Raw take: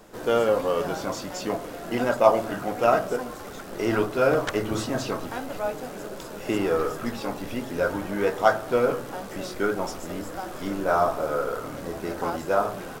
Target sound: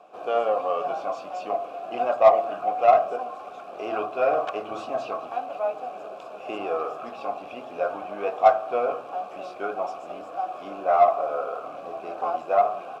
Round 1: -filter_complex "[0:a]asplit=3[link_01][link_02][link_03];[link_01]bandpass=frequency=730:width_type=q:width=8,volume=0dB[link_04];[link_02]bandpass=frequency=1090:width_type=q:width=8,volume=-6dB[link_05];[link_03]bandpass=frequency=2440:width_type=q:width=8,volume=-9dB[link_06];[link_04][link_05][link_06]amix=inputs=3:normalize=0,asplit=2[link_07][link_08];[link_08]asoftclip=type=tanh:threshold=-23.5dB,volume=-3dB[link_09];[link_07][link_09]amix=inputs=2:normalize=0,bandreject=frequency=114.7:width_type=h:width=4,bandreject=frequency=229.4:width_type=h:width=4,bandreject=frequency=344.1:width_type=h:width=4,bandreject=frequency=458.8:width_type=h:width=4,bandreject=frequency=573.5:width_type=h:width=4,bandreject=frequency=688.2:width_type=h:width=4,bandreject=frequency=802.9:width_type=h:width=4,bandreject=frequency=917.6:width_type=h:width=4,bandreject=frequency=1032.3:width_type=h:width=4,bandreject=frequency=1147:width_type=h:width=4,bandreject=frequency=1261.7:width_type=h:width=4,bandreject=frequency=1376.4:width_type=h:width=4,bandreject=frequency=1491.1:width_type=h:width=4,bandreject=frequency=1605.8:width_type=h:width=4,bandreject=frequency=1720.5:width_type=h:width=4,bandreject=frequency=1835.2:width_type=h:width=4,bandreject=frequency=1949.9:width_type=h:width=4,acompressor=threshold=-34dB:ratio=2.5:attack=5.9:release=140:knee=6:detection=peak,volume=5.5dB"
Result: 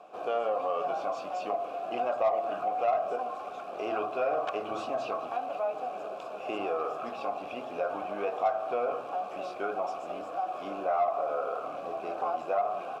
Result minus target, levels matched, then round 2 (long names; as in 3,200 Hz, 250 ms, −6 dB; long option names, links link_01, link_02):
downward compressor: peak gain reduction +13 dB
-filter_complex "[0:a]asplit=3[link_01][link_02][link_03];[link_01]bandpass=frequency=730:width_type=q:width=8,volume=0dB[link_04];[link_02]bandpass=frequency=1090:width_type=q:width=8,volume=-6dB[link_05];[link_03]bandpass=frequency=2440:width_type=q:width=8,volume=-9dB[link_06];[link_04][link_05][link_06]amix=inputs=3:normalize=0,asplit=2[link_07][link_08];[link_08]asoftclip=type=tanh:threshold=-23.5dB,volume=-3dB[link_09];[link_07][link_09]amix=inputs=2:normalize=0,bandreject=frequency=114.7:width_type=h:width=4,bandreject=frequency=229.4:width_type=h:width=4,bandreject=frequency=344.1:width_type=h:width=4,bandreject=frequency=458.8:width_type=h:width=4,bandreject=frequency=573.5:width_type=h:width=4,bandreject=frequency=688.2:width_type=h:width=4,bandreject=frequency=802.9:width_type=h:width=4,bandreject=frequency=917.6:width_type=h:width=4,bandreject=frequency=1032.3:width_type=h:width=4,bandreject=frequency=1147:width_type=h:width=4,bandreject=frequency=1261.7:width_type=h:width=4,bandreject=frequency=1376.4:width_type=h:width=4,bandreject=frequency=1491.1:width_type=h:width=4,bandreject=frequency=1605.8:width_type=h:width=4,bandreject=frequency=1720.5:width_type=h:width=4,bandreject=frequency=1835.2:width_type=h:width=4,bandreject=frequency=1949.9:width_type=h:width=4,volume=5.5dB"